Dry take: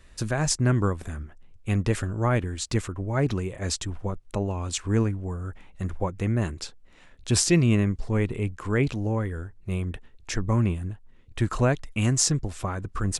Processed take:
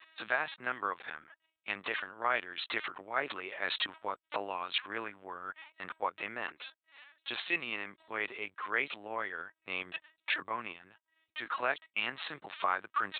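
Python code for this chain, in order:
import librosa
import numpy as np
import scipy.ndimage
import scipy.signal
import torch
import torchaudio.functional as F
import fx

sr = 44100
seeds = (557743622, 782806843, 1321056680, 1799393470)

y = fx.lpc_vocoder(x, sr, seeds[0], excitation='pitch_kept', order=16)
y = fx.rider(y, sr, range_db=5, speed_s=0.5)
y = scipy.signal.sosfilt(scipy.signal.butter(2, 1100.0, 'highpass', fs=sr, output='sos'), y)
y = y * librosa.db_to_amplitude(3.5)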